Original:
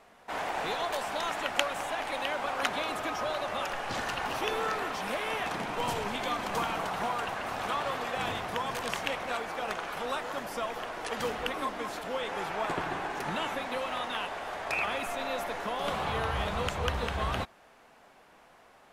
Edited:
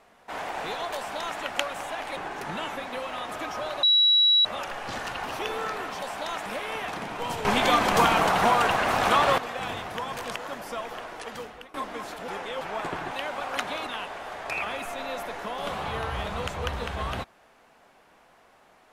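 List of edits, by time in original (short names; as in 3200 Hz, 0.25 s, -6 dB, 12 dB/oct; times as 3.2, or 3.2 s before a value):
0.96–1.4 copy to 5.04
2.17–2.93 swap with 12.96–14.08
3.47 add tone 3900 Hz -16 dBFS 0.62 s
6.03–7.96 gain +11 dB
8.94–10.21 cut
10.87–11.59 fade out, to -20 dB
12.13–12.46 reverse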